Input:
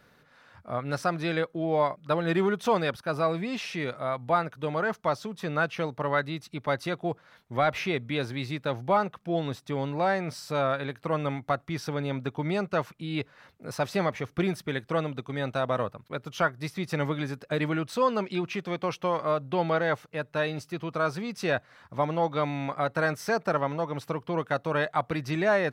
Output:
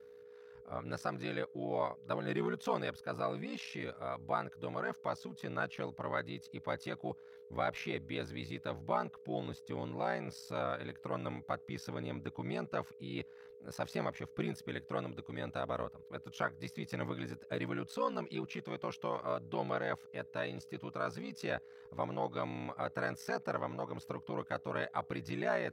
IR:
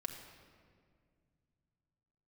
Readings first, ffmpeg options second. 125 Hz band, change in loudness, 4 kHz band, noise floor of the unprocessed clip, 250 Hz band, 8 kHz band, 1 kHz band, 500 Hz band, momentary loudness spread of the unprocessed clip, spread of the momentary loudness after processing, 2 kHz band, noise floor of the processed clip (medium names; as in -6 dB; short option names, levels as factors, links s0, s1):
-11.0 dB, -10.5 dB, -10.5 dB, -61 dBFS, -10.5 dB, -10.5 dB, -10.5 dB, -10.5 dB, 7 LU, 7 LU, -10.5 dB, -56 dBFS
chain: -af "aeval=exprs='val(0)+0.00794*sin(2*PI*450*n/s)':c=same,aeval=exprs='val(0)*sin(2*PI*30*n/s)':c=same,volume=0.422"